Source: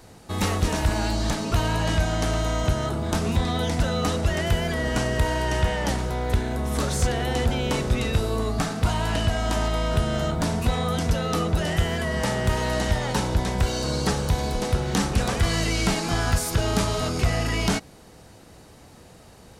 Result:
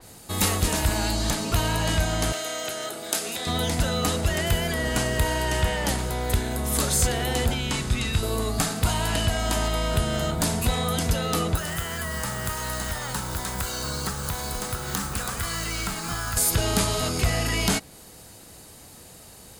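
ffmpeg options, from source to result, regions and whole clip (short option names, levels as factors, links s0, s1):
-filter_complex "[0:a]asettb=1/sr,asplit=3[s0][s1][s2];[s0]atrim=end=2.324[s3];[s1]atrim=start=2.32:end=3.47,asetpts=PTS-STARTPTS,afade=t=in:d=0.004:c=qsin,afade=t=out:st=1.146:d=0.004:c=qsin,highpass=470,equalizer=f=1000:w=3:g=-10.5[s4];[s2]atrim=start=3.466[s5];[s3][s4]acrossfade=d=0.004:c1=hsin:c2=qsin[s6];[s6][s5]acrossfade=d=0.004:c1=qsin:c2=hsin,asettb=1/sr,asplit=3[s7][s8][s9];[s7]atrim=end=7.544[s10];[s8]atrim=start=7.54:end=8.23,asetpts=PTS-STARTPTS,afade=t=in:d=0.004:c=qsin,afade=t=out:st=0.686:d=0.004:c=qsin,equalizer=f=520:w=1.4:g=-10.5,acrossover=split=9300[s11][s12];[s12]acompressor=threshold=0.00251:ratio=4:attack=1:release=60[s13];[s11][s13]amix=inputs=2:normalize=0,lowpass=12000[s14];[s9]atrim=start=8.226[s15];[s10][s14]acrossfade=d=0.004:c1=hsin:c2=qsin[s16];[s16][s15]acrossfade=d=0.004:c1=qsin:c2=hsin,asettb=1/sr,asplit=3[s17][s18][s19];[s17]atrim=end=11.554[s20];[s18]atrim=start=11.55:end=16.37,asetpts=PTS-STARTPTS,afade=t=in:d=0.004:c=qsin,afade=t=out:st=4.816:d=0.004:c=qsin,equalizer=f=1300:w=1.4:g=12,acrossover=split=180|4900[s21][s22][s23];[s21]acompressor=threshold=0.0316:ratio=4[s24];[s22]acompressor=threshold=0.0224:ratio=4[s25];[s23]acompressor=threshold=0.00794:ratio=4[s26];[s24][s25][s26]amix=inputs=3:normalize=0,acrusher=bits=6:mode=log:mix=0:aa=0.000001[s27];[s19]atrim=start=16.366[s28];[s20][s27]acrossfade=d=0.004:c1=hsin:c2=qsin[s29];[s29][s28]acrossfade=d=0.004:c1=qsin:c2=hsin,aemphasis=mode=production:type=75kf,bandreject=f=5700:w=12,adynamicequalizer=threshold=0.02:dfrequency=4000:dqfactor=0.7:tfrequency=4000:tqfactor=0.7:attack=5:release=100:ratio=0.375:range=2:mode=cutabove:tftype=highshelf,volume=0.841"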